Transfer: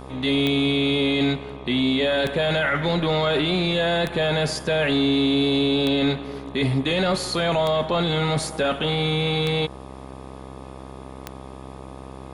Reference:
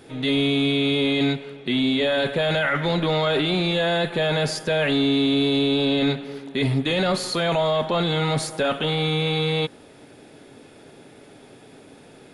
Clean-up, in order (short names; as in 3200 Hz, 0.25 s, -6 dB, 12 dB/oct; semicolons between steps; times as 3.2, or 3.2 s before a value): de-click; de-hum 65.8 Hz, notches 19